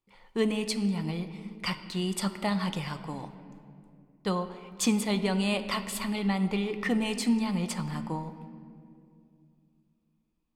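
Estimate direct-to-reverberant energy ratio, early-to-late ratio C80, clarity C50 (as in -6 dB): 9.0 dB, 12.0 dB, 11.0 dB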